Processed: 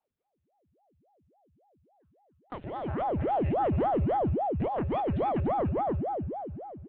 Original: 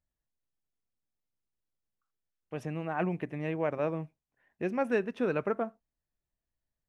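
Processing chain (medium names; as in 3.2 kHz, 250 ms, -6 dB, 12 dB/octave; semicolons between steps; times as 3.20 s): in parallel at -4 dB: bit crusher 8-bit; on the sum: monotone LPC vocoder at 8 kHz 240 Hz; on a send: multi-tap echo 177/289 ms -17.5/-9 dB; on the sum: compression 4:1, threshold -37 dBFS, peak gain reduction 15.5 dB; algorithmic reverb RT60 3 s, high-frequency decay 0.95×, pre-delay 70 ms, DRR 10 dB; ring modulator with a swept carrier 450 Hz, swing 85%, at 3.6 Hz; trim +3 dB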